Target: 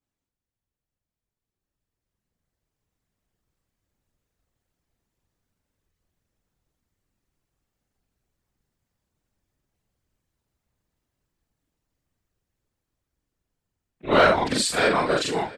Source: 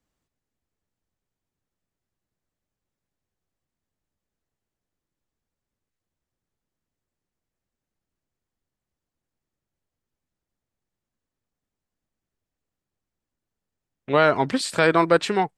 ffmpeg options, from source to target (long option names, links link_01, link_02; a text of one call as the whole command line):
ffmpeg -i in.wav -filter_complex "[0:a]afftfilt=real='re':imag='-im':win_size=4096:overlap=0.75,asplit=2[link_01][link_02];[link_02]volume=14dB,asoftclip=hard,volume=-14dB,volume=-8dB[link_03];[link_01][link_03]amix=inputs=2:normalize=0,afftfilt=real='hypot(re,im)*cos(2*PI*random(0))':imag='hypot(re,im)*sin(2*PI*random(1))':win_size=512:overlap=0.75,dynaudnorm=framelen=710:gausssize=7:maxgain=13.5dB,asplit=2[link_04][link_05];[link_05]aecho=0:1:671:0.075[link_06];[link_04][link_06]amix=inputs=2:normalize=0,adynamicequalizer=threshold=0.0112:dfrequency=2700:dqfactor=0.7:tfrequency=2700:tqfactor=0.7:attack=5:release=100:ratio=0.375:range=3.5:mode=boostabove:tftype=highshelf" out.wav